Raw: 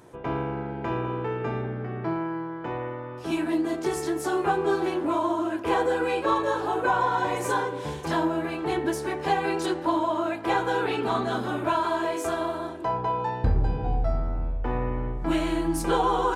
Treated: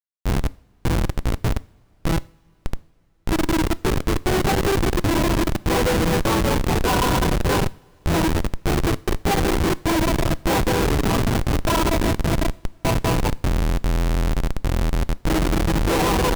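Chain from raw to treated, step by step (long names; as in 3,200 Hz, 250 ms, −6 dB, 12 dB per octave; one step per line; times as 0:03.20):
comparator with hysteresis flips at −22.5 dBFS
coupled-rooms reverb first 0.5 s, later 4.8 s, from −22 dB, DRR 19 dB
level +8 dB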